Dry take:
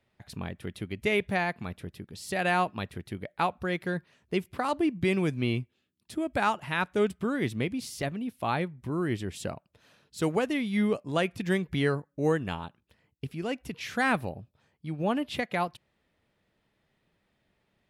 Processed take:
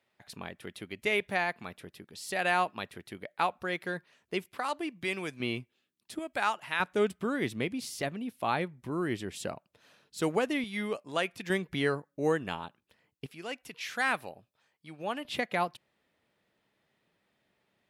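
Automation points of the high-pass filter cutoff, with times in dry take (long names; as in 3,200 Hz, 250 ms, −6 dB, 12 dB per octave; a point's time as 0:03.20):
high-pass filter 6 dB per octave
490 Hz
from 0:04.49 1,000 Hz
from 0:05.40 410 Hz
from 0:06.19 980 Hz
from 0:06.80 250 Hz
from 0:10.64 690 Hz
from 0:11.50 300 Hz
from 0:13.26 1,000 Hz
from 0:15.25 230 Hz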